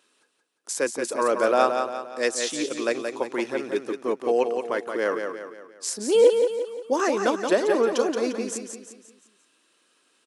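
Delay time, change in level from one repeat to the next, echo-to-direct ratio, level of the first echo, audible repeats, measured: 0.175 s, -7.0 dB, -5.0 dB, -6.0 dB, 5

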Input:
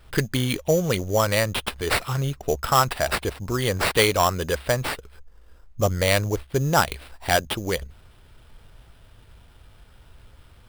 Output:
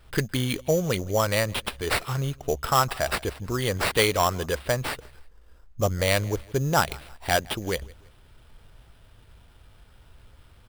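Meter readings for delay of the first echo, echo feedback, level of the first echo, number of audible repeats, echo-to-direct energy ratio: 0.163 s, 38%, -24.0 dB, 2, -23.5 dB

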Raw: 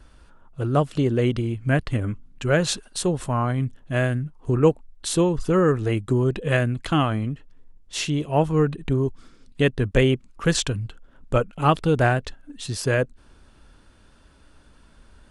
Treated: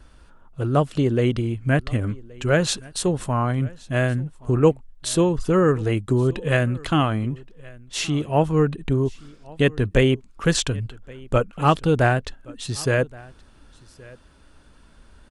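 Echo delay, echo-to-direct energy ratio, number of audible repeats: 1.123 s, -23.5 dB, 1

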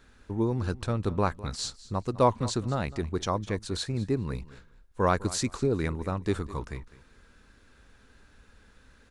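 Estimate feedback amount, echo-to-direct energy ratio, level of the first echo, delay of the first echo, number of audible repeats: 19%, -18.0 dB, -18.0 dB, 0.204 s, 2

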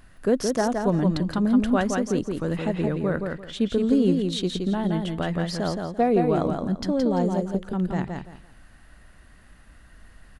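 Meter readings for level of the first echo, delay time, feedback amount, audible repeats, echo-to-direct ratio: -4.5 dB, 0.17 s, 24%, 3, -4.0 dB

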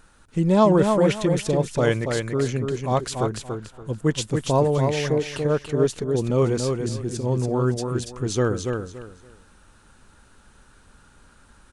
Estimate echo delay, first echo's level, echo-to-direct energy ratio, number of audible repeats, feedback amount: 0.285 s, -5.0 dB, -4.5 dB, 3, 24%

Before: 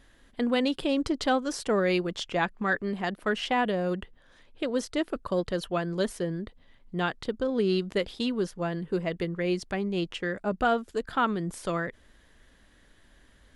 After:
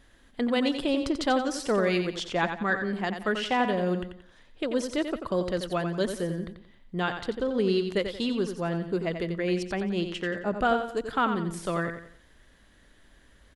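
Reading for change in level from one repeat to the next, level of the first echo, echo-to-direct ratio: -9.0 dB, -8.0 dB, -7.5 dB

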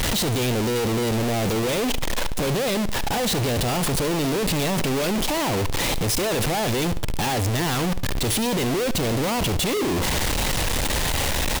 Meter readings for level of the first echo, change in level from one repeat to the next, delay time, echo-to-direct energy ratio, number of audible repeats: -17.0 dB, -8.0 dB, 72 ms, -16.5 dB, 3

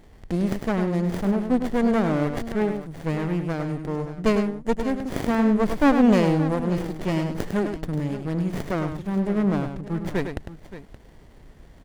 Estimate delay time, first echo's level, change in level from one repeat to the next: 0.102 s, -7.5 dB, no steady repeat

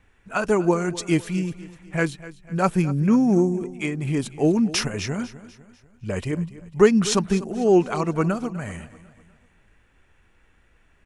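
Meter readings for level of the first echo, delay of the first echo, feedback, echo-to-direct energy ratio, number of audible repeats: -17.0 dB, 0.248 s, 45%, -16.0 dB, 3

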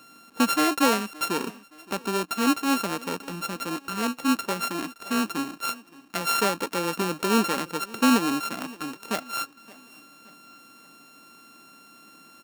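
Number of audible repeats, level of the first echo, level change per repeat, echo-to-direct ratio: 2, -21.5 dB, -7.5 dB, -20.5 dB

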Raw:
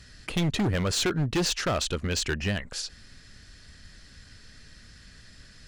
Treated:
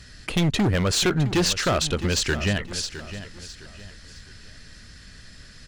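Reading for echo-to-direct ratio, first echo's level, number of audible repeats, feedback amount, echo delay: -12.5 dB, -13.0 dB, 3, 35%, 0.661 s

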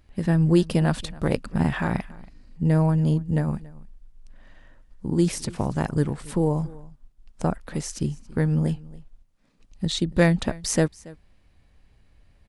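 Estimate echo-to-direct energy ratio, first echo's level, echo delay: -21.5 dB, -21.5 dB, 0.28 s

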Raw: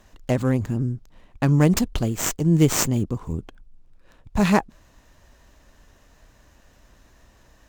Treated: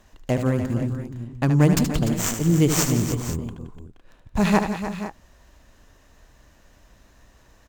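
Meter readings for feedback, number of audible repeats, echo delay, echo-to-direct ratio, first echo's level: no steady repeat, 5, 75 ms, -5.0 dB, -8.5 dB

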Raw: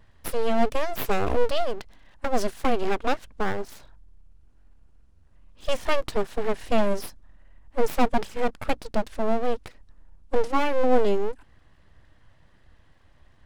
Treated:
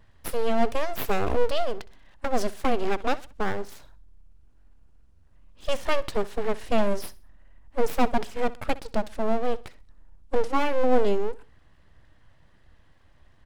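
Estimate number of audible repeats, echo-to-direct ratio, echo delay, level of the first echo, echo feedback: 2, -19.0 dB, 64 ms, -19.5 dB, 34%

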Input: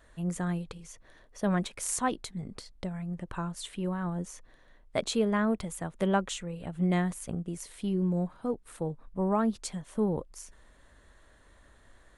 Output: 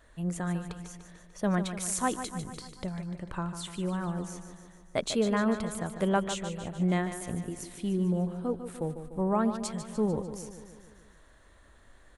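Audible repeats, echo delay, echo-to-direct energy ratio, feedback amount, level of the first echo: 6, 0.148 s, -8.0 dB, 59%, -10.0 dB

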